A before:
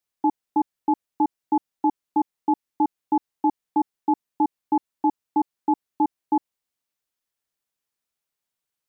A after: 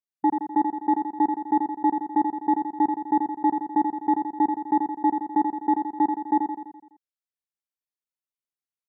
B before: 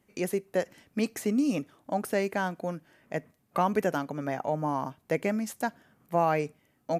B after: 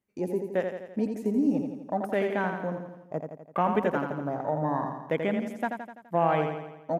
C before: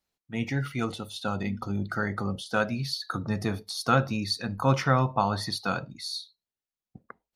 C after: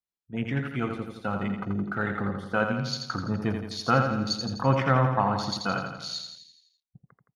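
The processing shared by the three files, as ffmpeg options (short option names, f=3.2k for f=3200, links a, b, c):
-filter_complex "[0:a]afwtdn=0.0141,asplit=2[a][b];[b]aecho=0:1:84|168|252|336|420|504|588:0.501|0.281|0.157|0.088|0.0493|0.0276|0.0155[c];[a][c]amix=inputs=2:normalize=0"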